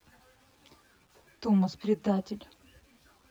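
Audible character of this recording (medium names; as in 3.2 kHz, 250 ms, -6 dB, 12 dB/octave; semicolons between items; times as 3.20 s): tremolo triangle 2 Hz, depth 30%; a quantiser's noise floor 10-bit, dither none; a shimmering, thickened sound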